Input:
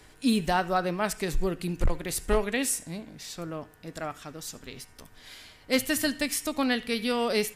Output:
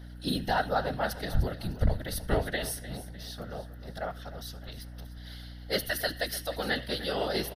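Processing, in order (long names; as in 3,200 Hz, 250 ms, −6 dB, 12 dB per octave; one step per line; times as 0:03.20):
phaser with its sweep stopped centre 1,600 Hz, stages 8
random phases in short frames
mains hum 60 Hz, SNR 12 dB
on a send: repeating echo 302 ms, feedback 42%, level −15 dB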